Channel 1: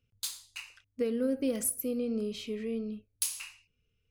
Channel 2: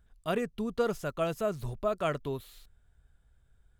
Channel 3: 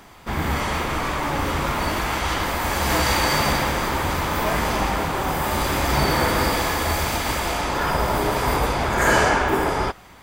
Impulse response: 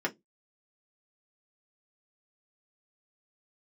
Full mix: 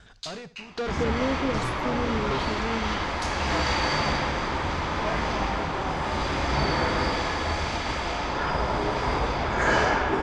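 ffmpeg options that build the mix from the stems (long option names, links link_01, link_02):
-filter_complex "[0:a]volume=2dB[link_01];[1:a]bass=frequency=250:gain=6,treble=frequency=4000:gain=13,asplit=2[link_02][link_03];[link_03]highpass=frequency=720:poles=1,volume=36dB,asoftclip=type=tanh:threshold=-18dB[link_04];[link_02][link_04]amix=inputs=2:normalize=0,lowpass=frequency=3700:poles=1,volume=-6dB,aeval=exprs='val(0)*pow(10,-21*if(lt(mod(1.3*n/s,1),2*abs(1.3)/1000),1-mod(1.3*n/s,1)/(2*abs(1.3)/1000),(mod(1.3*n/s,1)-2*abs(1.3)/1000)/(1-2*abs(1.3)/1000))/20)':channel_layout=same,volume=-4dB,asplit=2[link_05][link_06];[link_06]volume=-17.5dB[link_07];[2:a]adelay=600,volume=-4.5dB[link_08];[link_07]aecho=0:1:70|140|210|280|350:1|0.37|0.137|0.0507|0.0187[link_09];[link_01][link_05][link_08][link_09]amix=inputs=4:normalize=0,lowpass=frequency=5800:width=0.5412,lowpass=frequency=5800:width=1.3066"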